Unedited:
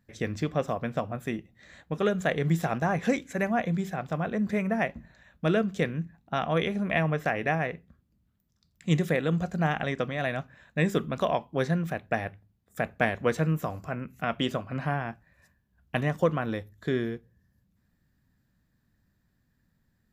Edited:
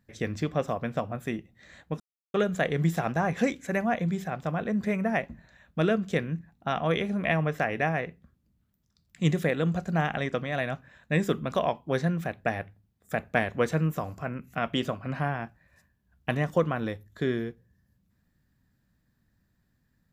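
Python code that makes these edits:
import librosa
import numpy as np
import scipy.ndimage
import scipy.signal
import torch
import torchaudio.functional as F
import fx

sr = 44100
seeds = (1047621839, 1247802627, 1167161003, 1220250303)

y = fx.edit(x, sr, fx.insert_silence(at_s=2.0, length_s=0.34), tone=tone)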